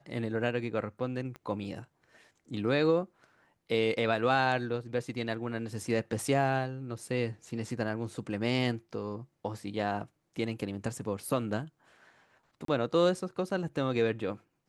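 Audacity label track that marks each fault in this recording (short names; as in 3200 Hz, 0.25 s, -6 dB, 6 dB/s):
1.360000	1.360000	pop -30 dBFS
12.650000	12.680000	gap 33 ms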